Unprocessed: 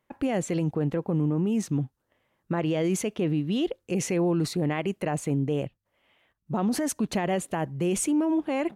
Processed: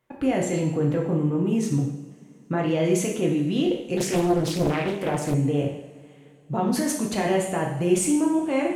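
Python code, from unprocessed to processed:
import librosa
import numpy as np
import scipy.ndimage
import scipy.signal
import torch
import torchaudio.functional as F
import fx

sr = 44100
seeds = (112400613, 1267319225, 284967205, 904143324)

y = fx.rev_double_slope(x, sr, seeds[0], early_s=0.74, late_s=3.5, knee_db=-22, drr_db=-1.5)
y = fx.doppler_dist(y, sr, depth_ms=0.99, at=(3.97, 5.34))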